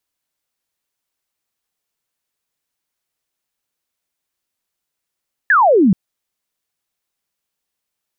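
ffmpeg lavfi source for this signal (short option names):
-f lavfi -i "aevalsrc='0.398*clip(t/0.002,0,1)*clip((0.43-t)/0.002,0,1)*sin(2*PI*1800*0.43/log(170/1800)*(exp(log(170/1800)*t/0.43)-1))':d=0.43:s=44100"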